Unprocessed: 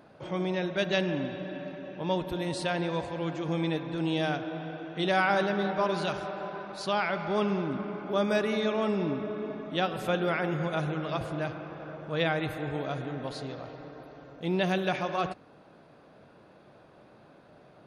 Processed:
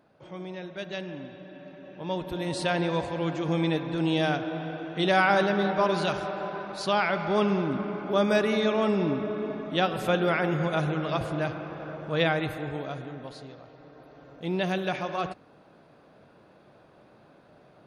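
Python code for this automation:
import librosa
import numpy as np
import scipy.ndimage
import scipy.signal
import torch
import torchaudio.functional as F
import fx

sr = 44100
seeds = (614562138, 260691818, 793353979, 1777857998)

y = fx.gain(x, sr, db=fx.line((1.52, -8.0), (2.7, 3.5), (12.23, 3.5), (13.67, -8.0), (14.34, -0.5)))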